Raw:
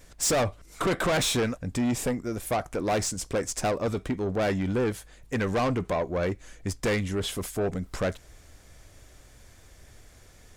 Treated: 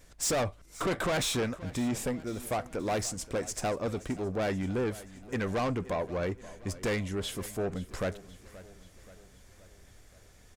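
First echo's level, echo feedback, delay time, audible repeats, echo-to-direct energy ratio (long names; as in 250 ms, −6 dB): −18.0 dB, 55%, 527 ms, 4, −16.5 dB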